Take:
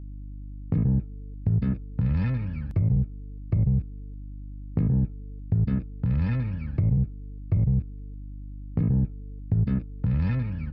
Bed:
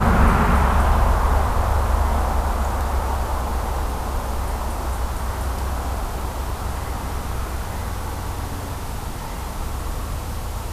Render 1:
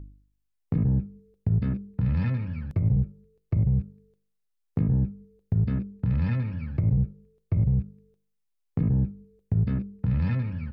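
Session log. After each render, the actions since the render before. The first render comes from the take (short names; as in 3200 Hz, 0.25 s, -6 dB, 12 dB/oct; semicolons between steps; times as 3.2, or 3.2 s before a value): de-hum 50 Hz, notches 11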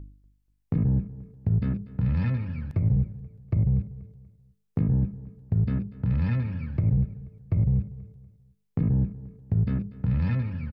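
feedback echo 0.241 s, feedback 36%, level -18 dB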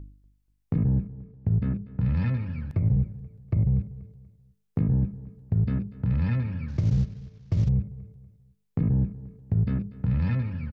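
1.07–2 air absorption 210 m; 6.68–7.69 CVSD 32 kbps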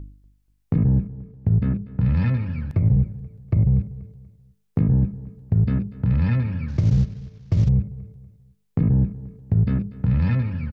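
gain +5 dB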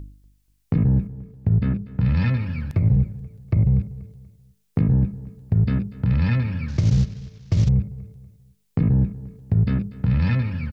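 high shelf 2200 Hz +9.5 dB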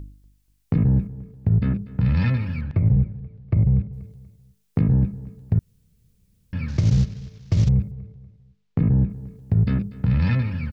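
2.61–3.93 air absorption 250 m; 5.59–6.53 room tone; 7.91–9.1 air absorption 170 m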